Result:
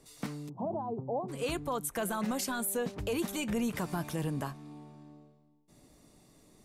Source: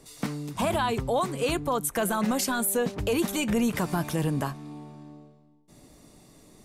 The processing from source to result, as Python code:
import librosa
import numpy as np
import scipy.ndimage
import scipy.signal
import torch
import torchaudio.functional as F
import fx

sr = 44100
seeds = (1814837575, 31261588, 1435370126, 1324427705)

y = fx.ellip_bandpass(x, sr, low_hz=120.0, high_hz=840.0, order=3, stop_db=40, at=(0.48, 1.28), fade=0.02)
y = F.gain(torch.from_numpy(y), -7.0).numpy()